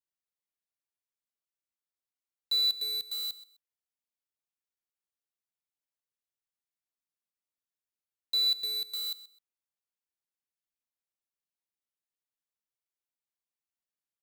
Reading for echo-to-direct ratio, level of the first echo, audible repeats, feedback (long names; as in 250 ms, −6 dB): −16.0 dB, −16.0 dB, 2, 22%